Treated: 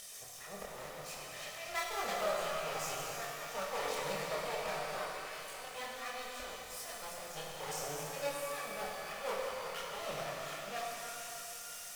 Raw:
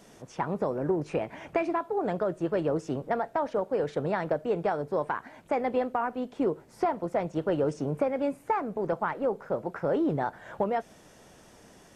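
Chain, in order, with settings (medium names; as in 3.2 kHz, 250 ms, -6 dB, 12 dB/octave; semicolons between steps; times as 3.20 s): comb filter that takes the minimum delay 1.6 ms; pre-emphasis filter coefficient 0.97; 4.45–5.66 s: compression 2:1, threshold -55 dBFS, peak gain reduction 7.5 dB; slow attack 255 ms; upward compressor, threshold -56 dBFS; chorus voices 4, 0.82 Hz, delay 26 ms, depth 1.4 ms; pitch-shifted reverb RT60 3.2 s, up +12 st, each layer -8 dB, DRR -2.5 dB; trim +12.5 dB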